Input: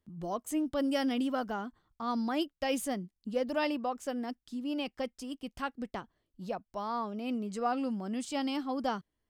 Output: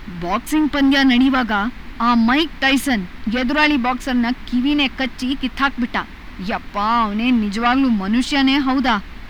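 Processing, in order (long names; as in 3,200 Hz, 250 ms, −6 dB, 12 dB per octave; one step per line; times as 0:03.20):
leveller curve on the samples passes 2
background noise brown −39 dBFS
graphic EQ with 10 bands 125 Hz −8 dB, 250 Hz +9 dB, 500 Hz −9 dB, 1,000 Hz +5 dB, 2,000 Hz +12 dB, 4,000 Hz +8 dB, 8,000 Hz −7 dB
level +6.5 dB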